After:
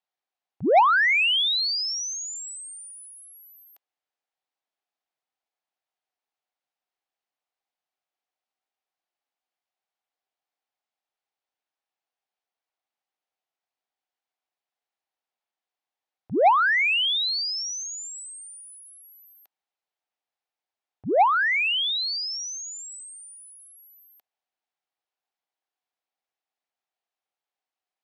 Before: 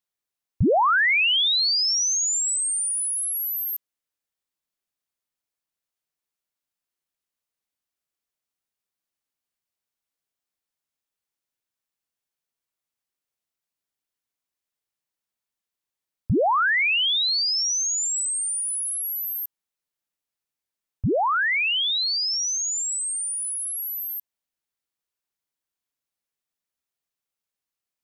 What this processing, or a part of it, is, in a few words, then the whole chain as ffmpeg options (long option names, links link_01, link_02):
intercom: -filter_complex "[0:a]asettb=1/sr,asplit=3[link_01][link_02][link_03];[link_01]atrim=end=17.434[link_04];[link_02]atrim=start=17.43:end=18.96,asetpts=PTS-STARTPTS,afade=type=in:duration=0.004:curve=qsin,afade=type=out:start_time=1.526:duration=0.004:curve=qsin,highpass=1300[link_05];[link_03]atrim=start=18.956[link_06];[link_04][link_05]acrossfade=duration=0.004:curve1=hsin:curve2=qsin[link_07];[link_07][link_06]acrossfade=duration=0.004:curve1=qsin:curve2=hsin,highpass=330,lowpass=4100,equalizer=frequency=760:width_type=o:width=0.43:gain=10.5,asoftclip=type=tanh:threshold=-11dB"